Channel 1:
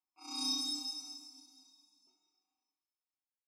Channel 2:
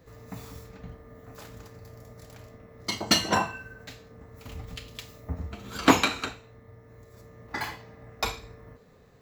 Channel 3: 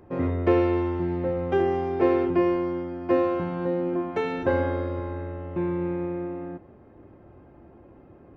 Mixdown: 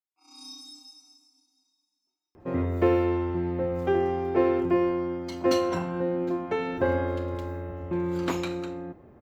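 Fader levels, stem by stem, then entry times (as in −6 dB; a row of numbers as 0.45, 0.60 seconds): −9.0, −13.0, −1.5 decibels; 0.00, 2.40, 2.35 seconds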